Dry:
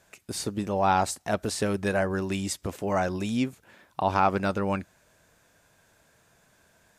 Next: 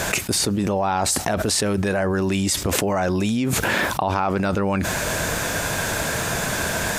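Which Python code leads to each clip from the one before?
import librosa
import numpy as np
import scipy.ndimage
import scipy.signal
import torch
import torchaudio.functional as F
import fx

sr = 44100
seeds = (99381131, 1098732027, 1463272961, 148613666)

y = fx.env_flatten(x, sr, amount_pct=100)
y = F.gain(torch.from_numpy(y), -1.5).numpy()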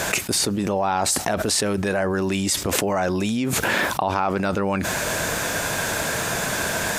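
y = fx.low_shelf(x, sr, hz=120.0, db=-7.5)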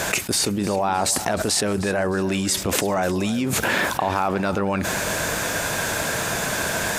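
y = fx.echo_feedback(x, sr, ms=308, feedback_pct=36, wet_db=-16.0)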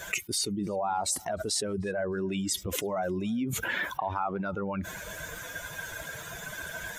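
y = fx.bin_expand(x, sr, power=2.0)
y = F.gain(torch.from_numpy(y), -4.5).numpy()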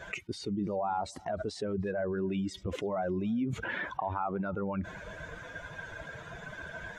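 y = fx.spacing_loss(x, sr, db_at_10k=27)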